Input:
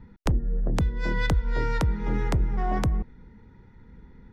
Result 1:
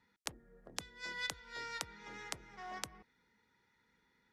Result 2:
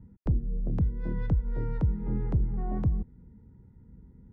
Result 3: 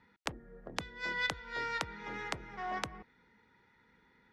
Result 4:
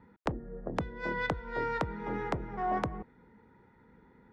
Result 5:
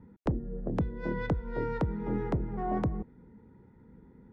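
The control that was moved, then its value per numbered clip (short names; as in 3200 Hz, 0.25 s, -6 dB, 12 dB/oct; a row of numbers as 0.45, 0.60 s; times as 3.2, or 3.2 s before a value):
band-pass, frequency: 7700, 110, 3000, 850, 340 Hz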